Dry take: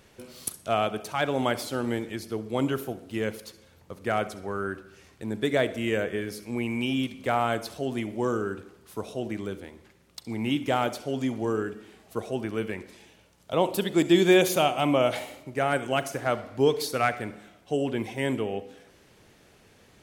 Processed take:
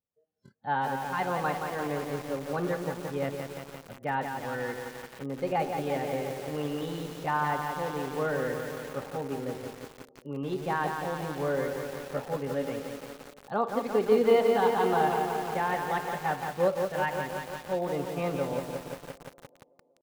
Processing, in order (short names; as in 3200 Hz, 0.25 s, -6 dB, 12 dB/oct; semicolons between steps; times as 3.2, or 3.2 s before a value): spectral noise reduction 29 dB; dynamic EQ 1100 Hz, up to +6 dB, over -39 dBFS, Q 0.95; AGC gain up to 7.5 dB; notch comb 260 Hz; pitch shift +4 st; tape spacing loss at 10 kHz 42 dB; tape echo 0.189 s, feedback 81%, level -20 dB, low-pass 1600 Hz; lo-fi delay 0.173 s, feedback 80%, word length 6-bit, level -5 dB; gain -7.5 dB